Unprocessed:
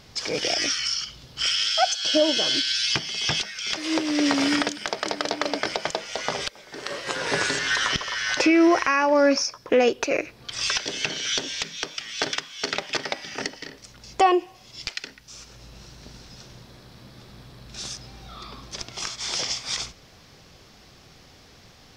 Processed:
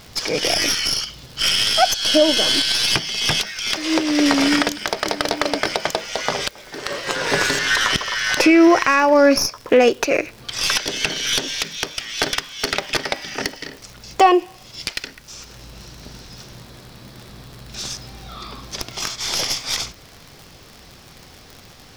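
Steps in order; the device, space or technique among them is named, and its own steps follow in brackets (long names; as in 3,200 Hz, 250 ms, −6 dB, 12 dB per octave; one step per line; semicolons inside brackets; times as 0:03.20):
record under a worn stylus (stylus tracing distortion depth 0.036 ms; surface crackle 72 per second −34 dBFS; pink noise bed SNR 32 dB)
level +5.5 dB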